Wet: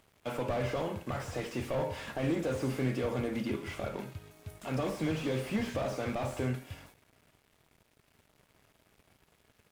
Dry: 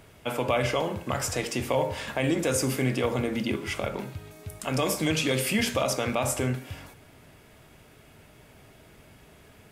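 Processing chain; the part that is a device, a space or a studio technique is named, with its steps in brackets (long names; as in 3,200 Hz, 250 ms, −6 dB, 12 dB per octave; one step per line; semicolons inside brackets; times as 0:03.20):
early transistor amplifier (dead-zone distortion −52 dBFS; slew-rate limiting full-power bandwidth 37 Hz)
level −4.5 dB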